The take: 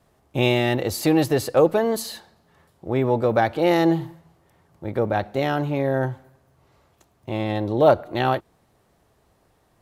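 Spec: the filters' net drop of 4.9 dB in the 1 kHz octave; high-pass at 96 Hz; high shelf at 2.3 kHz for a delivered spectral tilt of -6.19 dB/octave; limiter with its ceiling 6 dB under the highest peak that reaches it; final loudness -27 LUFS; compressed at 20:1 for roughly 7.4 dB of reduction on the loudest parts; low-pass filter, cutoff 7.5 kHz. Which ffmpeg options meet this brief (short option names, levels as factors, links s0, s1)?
-af "highpass=96,lowpass=7500,equalizer=f=1000:t=o:g=-6.5,highshelf=f=2300:g=-5,acompressor=threshold=0.1:ratio=20,volume=1.33,alimiter=limit=0.178:level=0:latency=1"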